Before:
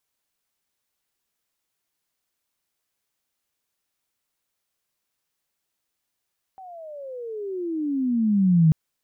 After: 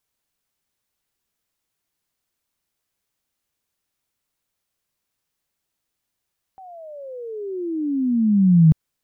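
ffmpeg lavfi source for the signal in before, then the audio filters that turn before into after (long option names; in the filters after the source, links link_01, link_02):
-f lavfi -i "aevalsrc='pow(10,(-12+27*(t/2.14-1))/20)*sin(2*PI*775*2.14/(-28*log(2)/12)*(exp(-28*log(2)/12*t/2.14)-1))':duration=2.14:sample_rate=44100"
-af "lowshelf=frequency=230:gain=6.5"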